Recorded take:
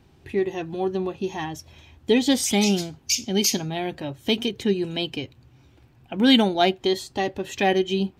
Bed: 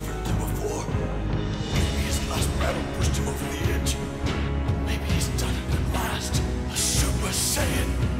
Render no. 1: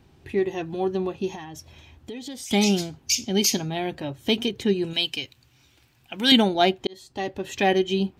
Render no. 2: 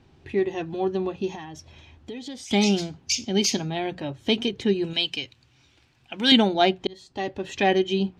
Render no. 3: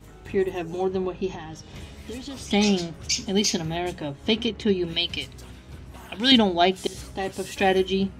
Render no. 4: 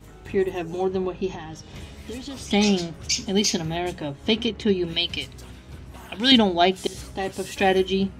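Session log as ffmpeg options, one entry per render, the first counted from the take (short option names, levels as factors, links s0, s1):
-filter_complex "[0:a]asettb=1/sr,asplit=3[s0][s1][s2];[s0]atrim=end=1.354[s3];[s1]atrim=start=1.35:end=2.51,asetpts=PTS-STARTPTS,afade=t=in:d=0.004:c=qsin,afade=t=out:st=1.156:d=0.004:c=qsin,acompressor=threshold=0.0178:ratio=5:attack=3.2:release=140:knee=1:detection=peak[s4];[s2]atrim=start=2.506[s5];[s3][s4]acrossfade=d=0.004:c1=hsin:c2=qsin[s6];[s6][s5]acrossfade=d=0.004:c1=qsin:c2=hsin,asettb=1/sr,asplit=3[s7][s8][s9];[s7]atrim=end=4.934[s10];[s8]atrim=start=4.93:end=6.32,asetpts=PTS-STARTPTS,afade=t=in:d=0.004:c=qsin,afade=t=out:st=1.386:d=0.004:c=qsin,tiltshelf=f=1500:g=-9[s11];[s9]atrim=start=6.316[s12];[s10][s11]acrossfade=d=0.004:c1=hsin:c2=qsin[s13];[s13][s12]acrossfade=d=0.004:c1=qsin:c2=hsin,asplit=2[s14][s15];[s14]atrim=end=6.87,asetpts=PTS-STARTPTS,afade=t=out:st=6.866:d=0.004:c=hsin[s16];[s15]atrim=start=6.87,asetpts=PTS-STARTPTS,afade=t=in:d=0.84:c=qsin[s17];[s16][s17]concat=n=2:v=0:a=1"
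-af "lowpass=6300,bandreject=f=60:t=h:w=6,bandreject=f=120:t=h:w=6,bandreject=f=180:t=h:w=6"
-filter_complex "[1:a]volume=0.141[s0];[0:a][s0]amix=inputs=2:normalize=0"
-af "volume=1.12"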